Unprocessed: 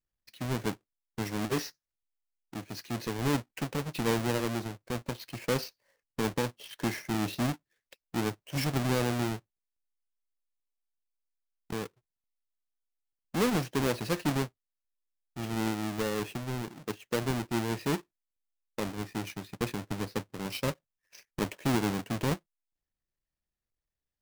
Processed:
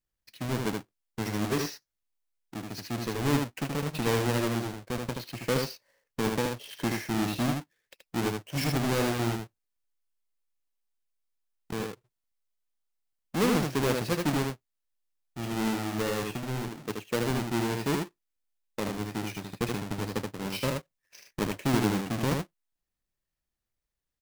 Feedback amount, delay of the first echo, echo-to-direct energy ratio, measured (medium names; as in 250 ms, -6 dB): no regular repeats, 77 ms, -4.0 dB